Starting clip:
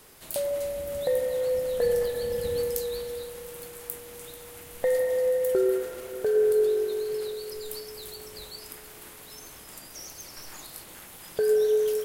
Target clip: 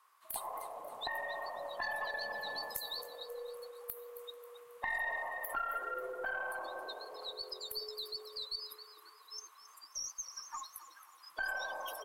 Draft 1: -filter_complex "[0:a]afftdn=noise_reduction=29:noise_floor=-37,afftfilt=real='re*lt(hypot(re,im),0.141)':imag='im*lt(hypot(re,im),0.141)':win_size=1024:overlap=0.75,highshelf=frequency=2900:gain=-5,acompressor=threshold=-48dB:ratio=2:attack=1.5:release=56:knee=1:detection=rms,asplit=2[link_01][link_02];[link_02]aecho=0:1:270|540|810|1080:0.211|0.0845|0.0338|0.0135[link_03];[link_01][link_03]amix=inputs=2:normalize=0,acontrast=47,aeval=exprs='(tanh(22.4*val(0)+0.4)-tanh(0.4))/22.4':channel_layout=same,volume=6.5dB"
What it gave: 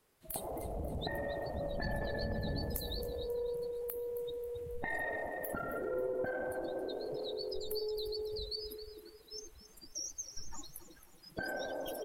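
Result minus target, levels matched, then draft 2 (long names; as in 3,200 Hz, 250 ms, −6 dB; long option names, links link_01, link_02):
1,000 Hz band −5.5 dB
-filter_complex "[0:a]afftdn=noise_reduction=29:noise_floor=-37,afftfilt=real='re*lt(hypot(re,im),0.141)':imag='im*lt(hypot(re,im),0.141)':win_size=1024:overlap=0.75,highpass=frequency=1100:width_type=q:width=9.4,highshelf=frequency=2900:gain=-5,acompressor=threshold=-48dB:ratio=2:attack=1.5:release=56:knee=1:detection=rms,asplit=2[link_01][link_02];[link_02]aecho=0:1:270|540|810|1080:0.211|0.0845|0.0338|0.0135[link_03];[link_01][link_03]amix=inputs=2:normalize=0,acontrast=47,aeval=exprs='(tanh(22.4*val(0)+0.4)-tanh(0.4))/22.4':channel_layout=same,volume=6.5dB"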